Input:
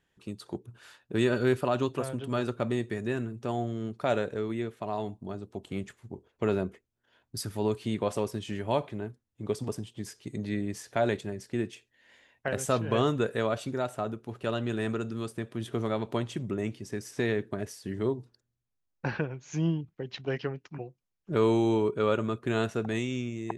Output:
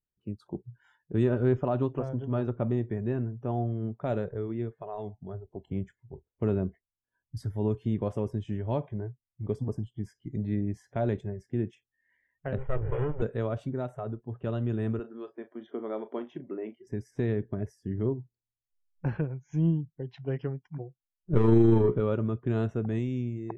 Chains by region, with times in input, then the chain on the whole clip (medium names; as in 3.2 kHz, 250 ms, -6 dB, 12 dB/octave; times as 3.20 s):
1.23–4.04 s: brick-wall FIR low-pass 10 kHz + peaking EQ 780 Hz +4.5 dB 1.1 oct + decimation joined by straight lines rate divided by 3×
12.58–13.22 s: comb filter that takes the minimum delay 2.1 ms + low-pass 2.6 kHz 24 dB/octave
14.99–16.87 s: band-pass 290–3600 Hz + doubling 37 ms -11.5 dB
21.33–22.00 s: waveshaping leveller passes 2 + AM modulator 25 Hz, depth 20% + doubling 17 ms -7 dB
whole clip: spectral noise reduction 22 dB; tilt EQ -4 dB/octave; trim -7 dB